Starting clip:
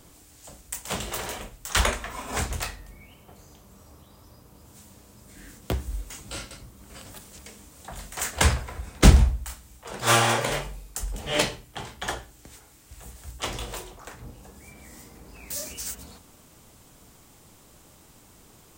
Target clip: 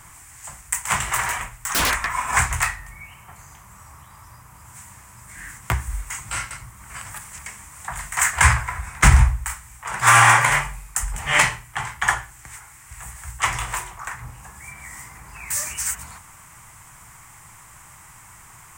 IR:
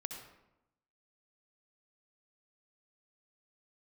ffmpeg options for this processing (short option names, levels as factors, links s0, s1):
-filter_complex "[0:a]equalizer=f=125:t=o:w=1:g=6,equalizer=f=250:t=o:w=1:g=-10,equalizer=f=500:t=o:w=1:g=-12,equalizer=f=1000:t=o:w=1:g=11,equalizer=f=2000:t=o:w=1:g=12,equalizer=f=4000:t=o:w=1:g=-10,equalizer=f=8000:t=o:w=1:g=9,asettb=1/sr,asplit=3[s0][s1][s2];[s0]atrim=end=1.264[s3];[s1]atrim=start=1.26:end=2.09,asetpts=PTS-STARTPTS,afade=t=in:d=0.004:c=qsin,afade=t=out:st=0.826:d=0.004:c=qsin,aeval=exprs='0.126*(abs(mod(val(0)/0.126+3,4)-2)-1)':c=same[s4];[s2]atrim=start=2.086[s5];[s3][s4]acrossfade=d=0.004:c1=hsin:c2=qsin[s6];[s6][s5]acrossfade=d=0.004:c1=qsin:c2=hsin,alimiter=level_in=1.68:limit=0.891:release=50:level=0:latency=1,volume=0.891"